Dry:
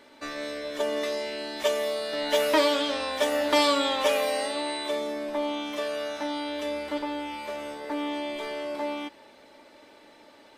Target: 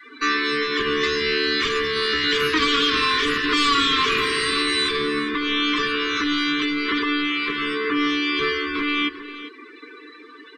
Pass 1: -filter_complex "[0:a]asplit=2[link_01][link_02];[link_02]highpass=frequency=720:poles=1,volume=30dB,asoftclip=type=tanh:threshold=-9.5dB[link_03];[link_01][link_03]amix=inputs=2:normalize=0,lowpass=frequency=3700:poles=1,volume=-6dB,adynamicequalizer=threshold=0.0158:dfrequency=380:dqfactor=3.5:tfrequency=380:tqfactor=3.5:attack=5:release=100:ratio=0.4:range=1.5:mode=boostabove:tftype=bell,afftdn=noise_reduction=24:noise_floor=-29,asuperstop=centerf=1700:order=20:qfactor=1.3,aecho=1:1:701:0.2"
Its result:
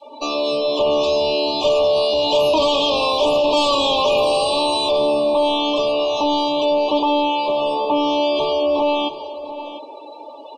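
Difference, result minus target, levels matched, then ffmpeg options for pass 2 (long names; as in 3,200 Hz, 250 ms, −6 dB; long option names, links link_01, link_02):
echo 302 ms late; 2,000 Hz band −13.0 dB
-filter_complex "[0:a]asplit=2[link_01][link_02];[link_02]highpass=frequency=720:poles=1,volume=30dB,asoftclip=type=tanh:threshold=-9.5dB[link_03];[link_01][link_03]amix=inputs=2:normalize=0,lowpass=frequency=3700:poles=1,volume=-6dB,adynamicequalizer=threshold=0.0158:dfrequency=380:dqfactor=3.5:tfrequency=380:tqfactor=3.5:attack=5:release=100:ratio=0.4:range=1.5:mode=boostabove:tftype=bell,afftdn=noise_reduction=24:noise_floor=-29,asuperstop=centerf=690:order=20:qfactor=1.3,aecho=1:1:399:0.2"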